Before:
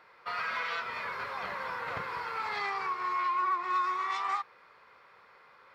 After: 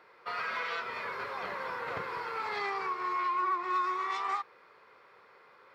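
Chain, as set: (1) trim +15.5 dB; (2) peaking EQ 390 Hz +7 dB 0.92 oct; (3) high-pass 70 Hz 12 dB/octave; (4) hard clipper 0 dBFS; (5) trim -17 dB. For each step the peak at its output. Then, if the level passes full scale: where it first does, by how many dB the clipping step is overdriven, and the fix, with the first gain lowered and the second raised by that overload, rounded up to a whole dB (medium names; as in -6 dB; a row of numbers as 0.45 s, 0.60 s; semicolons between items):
-5.5 dBFS, -5.0 dBFS, -5.0 dBFS, -5.0 dBFS, -22.0 dBFS; nothing clips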